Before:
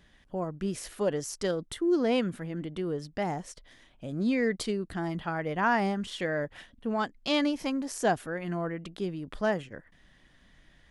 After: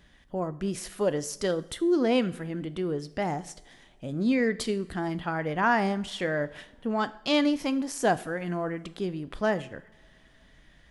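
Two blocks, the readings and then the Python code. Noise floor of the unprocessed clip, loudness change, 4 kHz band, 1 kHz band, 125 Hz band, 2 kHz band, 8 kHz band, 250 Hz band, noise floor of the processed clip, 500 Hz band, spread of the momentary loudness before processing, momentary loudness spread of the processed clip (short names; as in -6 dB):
-62 dBFS, +2.0 dB, +2.0 dB, +2.0 dB, +1.5 dB, +2.5 dB, +2.0 dB, +2.5 dB, -58 dBFS, +2.0 dB, 10 LU, 11 LU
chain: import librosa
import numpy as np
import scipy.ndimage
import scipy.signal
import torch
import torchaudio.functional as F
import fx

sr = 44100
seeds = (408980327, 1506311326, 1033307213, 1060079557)

y = fx.rev_double_slope(x, sr, seeds[0], early_s=0.58, late_s=3.1, knee_db=-21, drr_db=13.5)
y = y * 10.0 ** (2.0 / 20.0)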